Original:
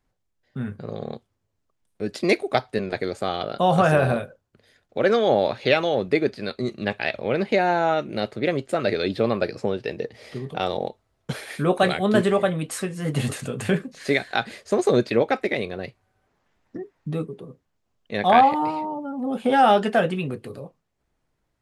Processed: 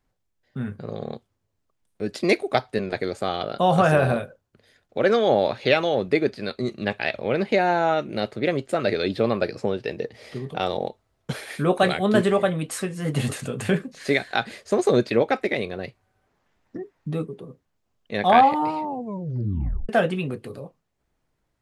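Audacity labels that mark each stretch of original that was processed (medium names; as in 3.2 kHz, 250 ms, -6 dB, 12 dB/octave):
18.830000	18.830000	tape stop 1.06 s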